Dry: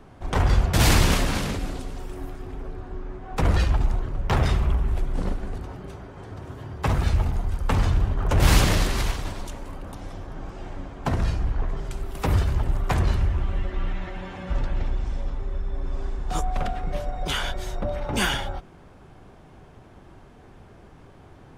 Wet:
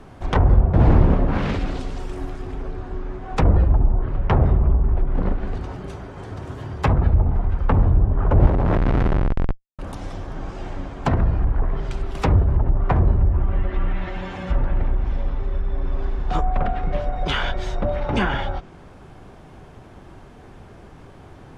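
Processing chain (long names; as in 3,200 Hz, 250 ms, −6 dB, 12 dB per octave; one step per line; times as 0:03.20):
0:08.46–0:09.79: comparator with hysteresis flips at −25 dBFS
treble cut that deepens with the level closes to 740 Hz, closed at −17 dBFS
level +5 dB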